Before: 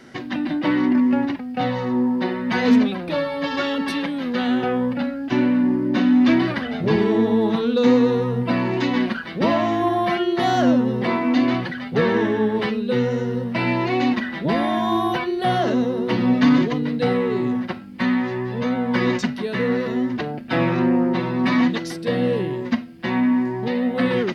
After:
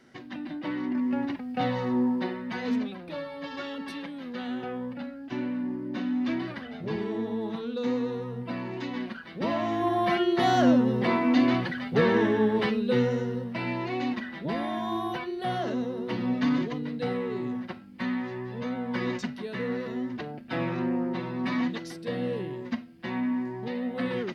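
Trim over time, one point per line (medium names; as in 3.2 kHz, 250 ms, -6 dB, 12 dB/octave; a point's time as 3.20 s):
0.84 s -12.5 dB
1.51 s -5 dB
2.09 s -5 dB
2.58 s -13 dB
9.13 s -13 dB
10.15 s -3.5 dB
13.00 s -3.5 dB
13.59 s -10 dB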